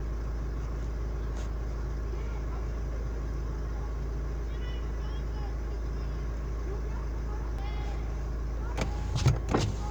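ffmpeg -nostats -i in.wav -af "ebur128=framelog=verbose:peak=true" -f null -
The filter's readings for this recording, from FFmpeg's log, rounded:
Integrated loudness:
  I:         -34.6 LUFS
  Threshold: -44.6 LUFS
Loudness range:
  LRA:         3.2 LU
  Threshold: -55.5 LUFS
  LRA low:   -36.0 LUFS
  LRA high:  -32.8 LUFS
True peak:
  Peak:      -10.6 dBFS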